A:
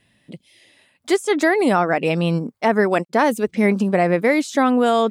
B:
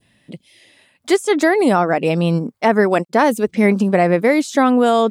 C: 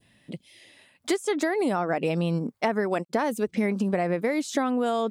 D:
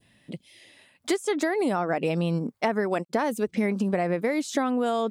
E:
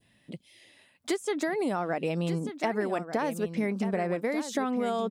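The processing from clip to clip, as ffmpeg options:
ffmpeg -i in.wav -af "adynamicequalizer=threshold=0.0251:dfrequency=2100:dqfactor=0.87:tfrequency=2100:tqfactor=0.87:attack=5:release=100:ratio=0.375:range=2.5:mode=cutabove:tftype=bell,volume=3dB" out.wav
ffmpeg -i in.wav -af "acompressor=threshold=-19dB:ratio=6,volume=-3dB" out.wav
ffmpeg -i in.wav -af anull out.wav
ffmpeg -i in.wav -af "aecho=1:1:1189:0.299,volume=-4dB" out.wav

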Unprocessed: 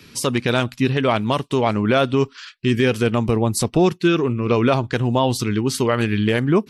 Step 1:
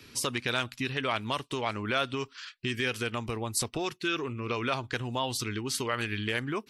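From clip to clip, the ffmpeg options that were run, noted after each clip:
ffmpeg -i in.wav -filter_complex "[0:a]equalizer=frequency=180:width=3.8:gain=-10,acrossover=split=1100[link_01][link_02];[link_01]acompressor=threshold=-28dB:ratio=4[link_03];[link_03][link_02]amix=inputs=2:normalize=0,volume=-5.5dB" out.wav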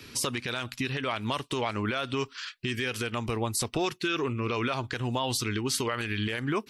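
ffmpeg -i in.wav -af "alimiter=limit=-23dB:level=0:latency=1:release=82,volume=5dB" out.wav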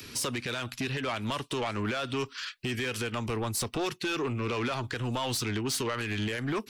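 ffmpeg -i in.wav -filter_complex "[0:a]acrossover=split=370|460|5000[link_01][link_02][link_03][link_04];[link_04]acompressor=mode=upward:threshold=-49dB:ratio=2.5[link_05];[link_01][link_02][link_03][link_05]amix=inputs=4:normalize=0,asoftclip=type=tanh:threshold=-27dB,volume=1.5dB" out.wav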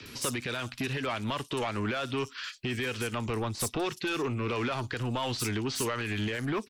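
ffmpeg -i in.wav -filter_complex "[0:a]acrossover=split=5300[link_01][link_02];[link_02]adelay=60[link_03];[link_01][link_03]amix=inputs=2:normalize=0" out.wav

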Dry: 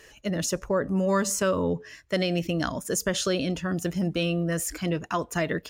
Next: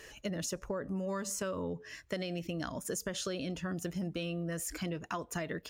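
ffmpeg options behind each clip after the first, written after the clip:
ffmpeg -i in.wav -af "acompressor=threshold=-35dB:ratio=5" out.wav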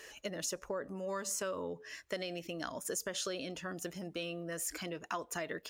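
ffmpeg -i in.wav -af "bass=frequency=250:gain=-12,treble=frequency=4000:gain=1" out.wav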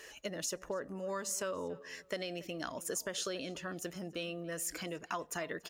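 ffmpeg -i in.wav -filter_complex "[0:a]asplit=2[link_01][link_02];[link_02]adelay=284,lowpass=frequency=3100:poles=1,volume=-19dB,asplit=2[link_03][link_04];[link_04]adelay=284,lowpass=frequency=3100:poles=1,volume=0.29[link_05];[link_01][link_03][link_05]amix=inputs=3:normalize=0" out.wav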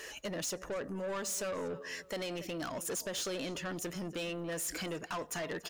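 ffmpeg -i in.wav -af "asoftclip=type=tanh:threshold=-40dB,volume=6.5dB" out.wav

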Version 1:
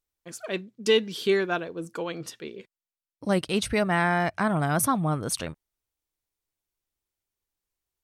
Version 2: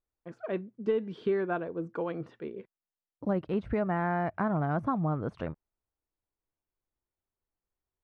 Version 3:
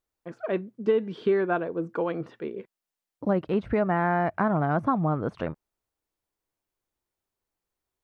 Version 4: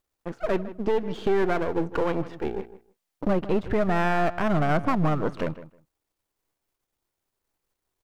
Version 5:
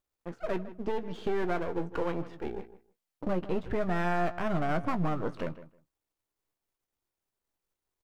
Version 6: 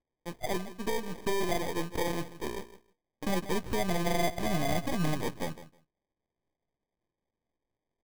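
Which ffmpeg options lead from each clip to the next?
ffmpeg -i in.wav -af "deesser=0.85,lowpass=1300,acompressor=threshold=-27dB:ratio=2.5" out.wav
ffmpeg -i in.wav -af "lowshelf=frequency=120:gain=-7.5,volume=6dB" out.wav
ffmpeg -i in.wav -filter_complex "[0:a]aeval=exprs='if(lt(val(0),0),0.251*val(0),val(0))':channel_layout=same,alimiter=limit=-21.5dB:level=0:latency=1:release=158,asplit=2[link_01][link_02];[link_02]adelay=157,lowpass=frequency=2600:poles=1,volume=-15dB,asplit=2[link_03][link_04];[link_04]adelay=157,lowpass=frequency=2600:poles=1,volume=0.16[link_05];[link_01][link_03][link_05]amix=inputs=3:normalize=0,volume=8dB" out.wav
ffmpeg -i in.wav -filter_complex "[0:a]asplit=2[link_01][link_02];[link_02]adelay=17,volume=-10dB[link_03];[link_01][link_03]amix=inputs=2:normalize=0,volume=-7dB" out.wav
ffmpeg -i in.wav -af "acrusher=samples=32:mix=1:aa=0.000001" out.wav

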